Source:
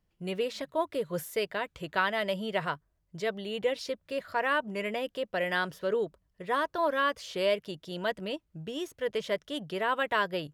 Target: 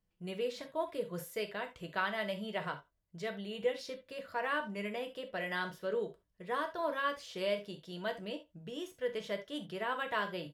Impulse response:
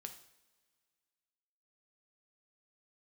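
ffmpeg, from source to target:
-filter_complex "[0:a]asplit=2[a][b];[b]adelay=90,highpass=300,lowpass=3.4k,asoftclip=type=hard:threshold=-22dB,volume=-23dB[c];[a][c]amix=inputs=2:normalize=0[d];[1:a]atrim=start_sample=2205,atrim=end_sample=4410,asetrate=52920,aresample=44100[e];[d][e]afir=irnorm=-1:irlink=0"

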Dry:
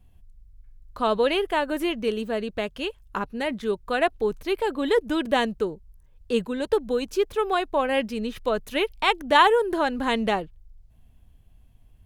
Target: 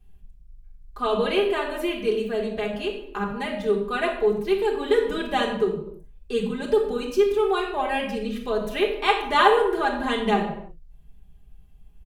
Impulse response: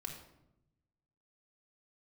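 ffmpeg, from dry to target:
-filter_complex "[0:a]aecho=1:1:4.9:0.8[a];[1:a]atrim=start_sample=2205,afade=t=out:st=0.39:d=0.01,atrim=end_sample=17640[b];[a][b]afir=irnorm=-1:irlink=0"

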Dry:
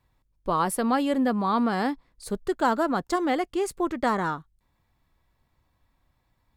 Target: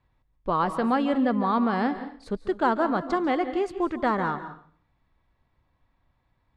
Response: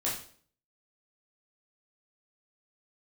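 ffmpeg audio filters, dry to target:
-filter_complex "[0:a]lowpass=3.4k,asplit=2[a][b];[1:a]atrim=start_sample=2205,adelay=141[c];[b][c]afir=irnorm=-1:irlink=0,volume=-17dB[d];[a][d]amix=inputs=2:normalize=0"

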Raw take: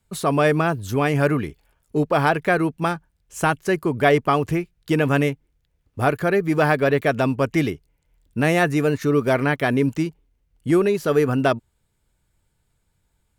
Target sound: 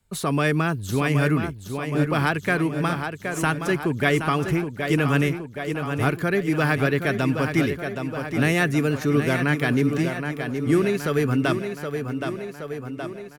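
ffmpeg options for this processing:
-filter_complex "[0:a]aecho=1:1:771|1542|2313|3084|3855|4626|5397:0.398|0.223|0.125|0.0699|0.0392|0.0219|0.0123,acrossover=split=390|1100[a][b][c];[b]acompressor=threshold=-34dB:ratio=6[d];[a][d][c]amix=inputs=3:normalize=0"

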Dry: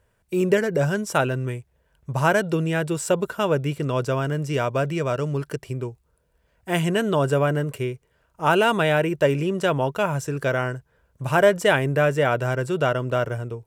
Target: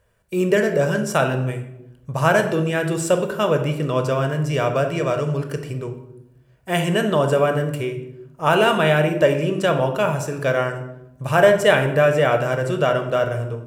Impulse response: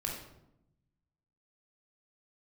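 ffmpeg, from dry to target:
-filter_complex "[0:a]asplit=2[a][b];[1:a]atrim=start_sample=2205,lowshelf=f=130:g=-10.5[c];[b][c]afir=irnorm=-1:irlink=0,volume=-1dB[d];[a][d]amix=inputs=2:normalize=0,volume=-2.5dB"

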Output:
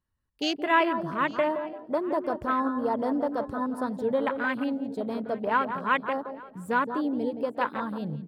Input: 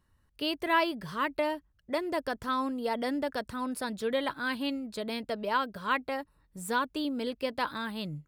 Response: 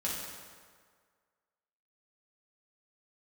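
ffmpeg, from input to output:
-filter_complex "[0:a]asplit=2[a][b];[b]adelay=172,lowpass=f=1.6k:p=1,volume=-7dB,asplit=2[c][d];[d]adelay=172,lowpass=f=1.6k:p=1,volume=0.43,asplit=2[e][f];[f]adelay=172,lowpass=f=1.6k:p=1,volume=0.43,asplit=2[g][h];[h]adelay=172,lowpass=f=1.6k:p=1,volume=0.43,asplit=2[i][j];[j]adelay=172,lowpass=f=1.6k:p=1,volume=0.43[k];[c][e][g][i][k]amix=inputs=5:normalize=0[l];[a][l]amix=inputs=2:normalize=0,afwtdn=0.0178,asplit=2[m][n];[n]aecho=0:1:854:0.0841[o];[m][o]amix=inputs=2:normalize=0,volume=4dB"

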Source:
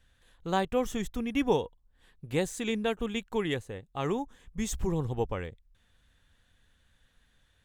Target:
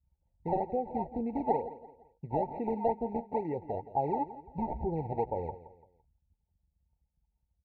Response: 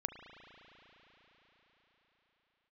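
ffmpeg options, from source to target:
-filter_complex "[0:a]anlmdn=0.000398,highpass=f=45:w=0.5412,highpass=f=45:w=1.3066,adynamicequalizer=threshold=0.00891:dfrequency=470:dqfactor=0.89:tfrequency=470:tqfactor=0.89:attack=5:release=100:ratio=0.375:range=2:mode=boostabove:tftype=bell,acompressor=threshold=-36dB:ratio=3,acrusher=samples=22:mix=1:aa=0.000001:lfo=1:lforange=35.2:lforate=2.2,lowpass=f=920:t=q:w=6.3,asplit=2[a][b];[b]adelay=13,volume=-13.5dB[c];[a][c]amix=inputs=2:normalize=0,aecho=1:1:170|340|510:0.168|0.0621|0.023,afftfilt=real='re*eq(mod(floor(b*sr/1024/930),2),0)':imag='im*eq(mod(floor(b*sr/1024/930),2),0)':win_size=1024:overlap=0.75,volume=1.5dB"

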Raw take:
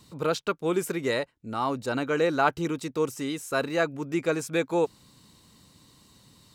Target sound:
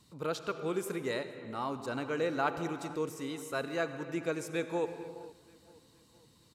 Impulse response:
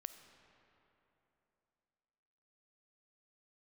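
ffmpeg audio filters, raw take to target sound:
-filter_complex "[0:a]asplit=2[a][b];[b]adelay=467,lowpass=f=3.2k:p=1,volume=-22dB,asplit=2[c][d];[d]adelay=467,lowpass=f=3.2k:p=1,volume=0.52,asplit=2[e][f];[f]adelay=467,lowpass=f=3.2k:p=1,volume=0.52,asplit=2[g][h];[h]adelay=467,lowpass=f=3.2k:p=1,volume=0.52[i];[a][c][e][g][i]amix=inputs=5:normalize=0[j];[1:a]atrim=start_sample=2205,afade=t=out:st=0.34:d=0.01,atrim=end_sample=15435,asetrate=27783,aresample=44100[k];[j][k]afir=irnorm=-1:irlink=0,volume=-5.5dB"

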